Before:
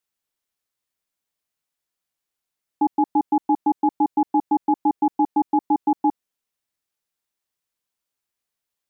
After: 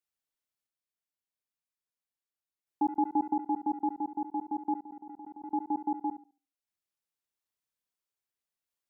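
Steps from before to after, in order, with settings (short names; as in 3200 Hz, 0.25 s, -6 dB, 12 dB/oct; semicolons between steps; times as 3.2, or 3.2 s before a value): random-step tremolo 1.5 Hz; tape echo 70 ms, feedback 28%, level -9.5 dB, low-pass 1000 Hz; 4.81–5.44 level quantiser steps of 19 dB; gain -7 dB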